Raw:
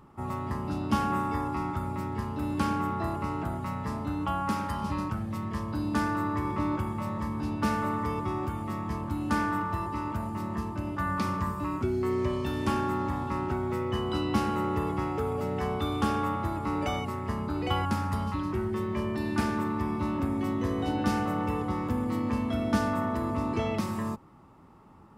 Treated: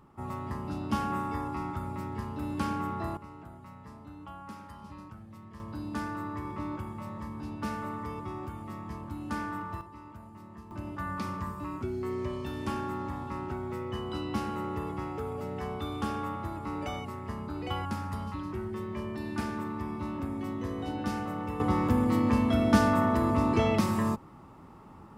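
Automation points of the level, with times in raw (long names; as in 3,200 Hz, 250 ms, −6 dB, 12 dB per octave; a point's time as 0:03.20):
−3.5 dB
from 0:03.17 −15 dB
from 0:05.60 −7 dB
from 0:09.81 −15 dB
from 0:10.71 −5.5 dB
from 0:21.60 +4 dB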